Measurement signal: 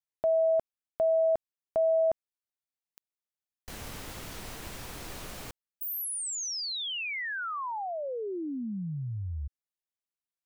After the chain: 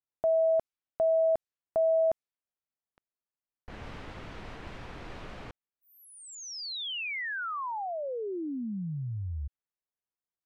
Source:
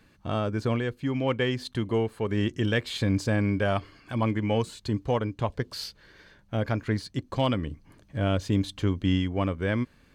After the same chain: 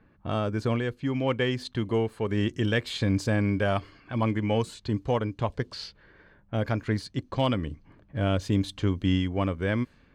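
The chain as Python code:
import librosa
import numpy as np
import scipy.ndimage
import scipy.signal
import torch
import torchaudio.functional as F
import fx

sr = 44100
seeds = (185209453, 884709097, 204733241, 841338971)

y = fx.env_lowpass(x, sr, base_hz=1500.0, full_db=-25.0)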